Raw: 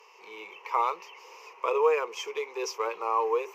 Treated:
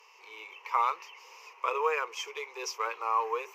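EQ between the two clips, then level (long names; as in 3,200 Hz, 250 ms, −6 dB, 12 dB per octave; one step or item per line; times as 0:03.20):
high-pass filter 1,100 Hz 6 dB per octave
dynamic equaliser 1,500 Hz, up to +6 dB, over −44 dBFS, Q 1.7
0.0 dB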